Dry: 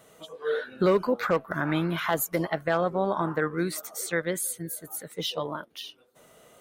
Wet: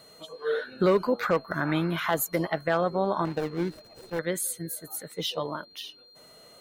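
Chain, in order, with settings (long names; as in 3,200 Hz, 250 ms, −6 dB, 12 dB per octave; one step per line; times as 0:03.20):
0:03.25–0:04.19: running median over 41 samples
steady tone 4,200 Hz −53 dBFS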